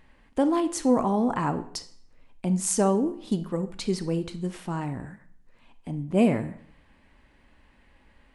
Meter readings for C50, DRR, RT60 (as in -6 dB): 14.0 dB, 10.5 dB, 0.60 s